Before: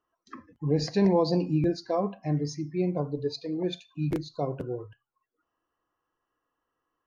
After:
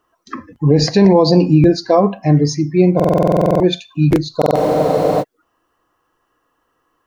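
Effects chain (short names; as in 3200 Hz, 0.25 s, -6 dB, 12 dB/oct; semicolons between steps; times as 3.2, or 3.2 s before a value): stuck buffer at 2.95/4.37, samples 2048, times 13; spectral freeze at 4.58, 0.63 s; maximiser +17 dB; gain -1 dB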